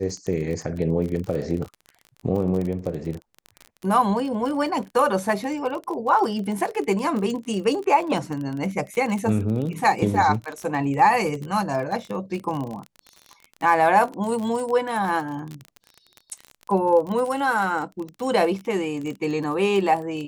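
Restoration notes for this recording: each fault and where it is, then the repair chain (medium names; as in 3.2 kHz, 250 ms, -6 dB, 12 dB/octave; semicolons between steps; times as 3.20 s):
crackle 31 per s -28 dBFS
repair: de-click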